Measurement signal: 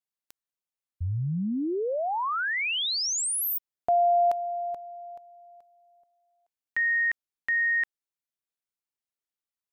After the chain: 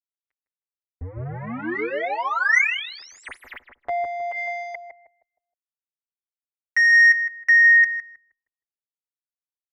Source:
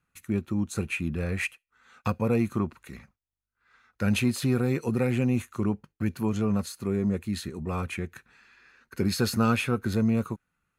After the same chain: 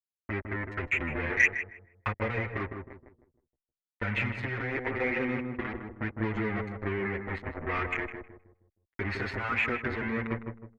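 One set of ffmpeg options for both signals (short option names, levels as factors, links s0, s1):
-filter_complex "[0:a]afftdn=nr=12:nf=-41,acrusher=bits=4:mix=0:aa=0.5,acompressor=threshold=0.0447:ratio=6:attack=5.7:release=104:knee=1:detection=rms,lowpass=f=2000:t=q:w=5.7,equalizer=f=180:t=o:w=0.53:g=-14.5,asoftclip=type=tanh:threshold=0.237,asplit=2[s0][s1];[s1]adelay=157,lowpass=f=930:p=1,volume=0.631,asplit=2[s2][s3];[s3]adelay=157,lowpass=f=930:p=1,volume=0.38,asplit=2[s4][s5];[s5]adelay=157,lowpass=f=930:p=1,volume=0.38,asplit=2[s6][s7];[s7]adelay=157,lowpass=f=930:p=1,volume=0.38,asplit=2[s8][s9];[s9]adelay=157,lowpass=f=930:p=1,volume=0.38[s10];[s0][s2][s4][s6][s8][s10]amix=inputs=6:normalize=0,asplit=2[s11][s12];[s12]adelay=6.9,afreqshift=-0.45[s13];[s11][s13]amix=inputs=2:normalize=1,volume=1.58"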